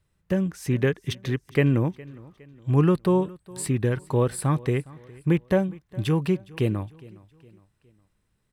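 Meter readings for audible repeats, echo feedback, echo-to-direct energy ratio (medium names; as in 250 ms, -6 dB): 2, 44%, -21.0 dB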